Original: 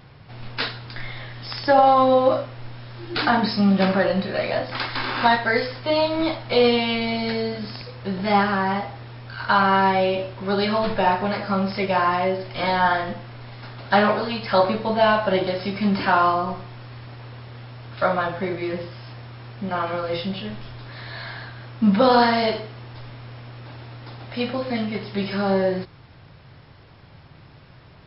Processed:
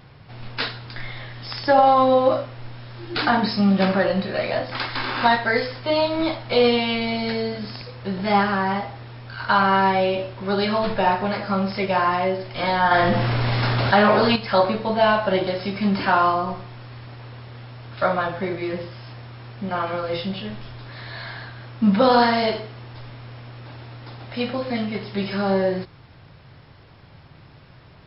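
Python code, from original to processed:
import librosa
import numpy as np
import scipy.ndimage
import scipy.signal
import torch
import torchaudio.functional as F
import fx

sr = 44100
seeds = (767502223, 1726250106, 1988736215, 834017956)

y = fx.env_flatten(x, sr, amount_pct=70, at=(12.91, 14.36))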